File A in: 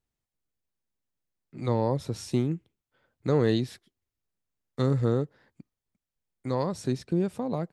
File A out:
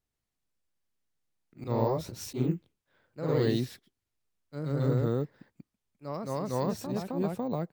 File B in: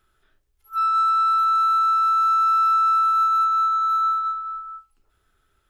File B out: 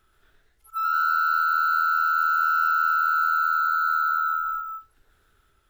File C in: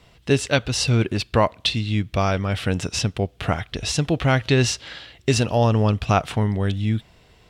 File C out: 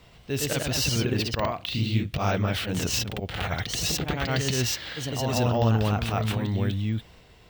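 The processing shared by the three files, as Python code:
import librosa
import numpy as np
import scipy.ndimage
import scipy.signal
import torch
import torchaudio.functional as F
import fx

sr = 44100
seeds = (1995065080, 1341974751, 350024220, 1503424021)

p1 = fx.auto_swell(x, sr, attack_ms=120.0)
p2 = fx.over_compress(p1, sr, threshold_db=-27.0, ratio=-1.0)
p3 = p1 + (p2 * librosa.db_to_amplitude(-1.0))
p4 = np.repeat(p3[::2], 2)[:len(p3)]
p5 = fx.echo_pitch(p4, sr, ms=128, semitones=1, count=2, db_per_echo=-3.0)
y = p5 * librosa.db_to_amplitude(-8.0)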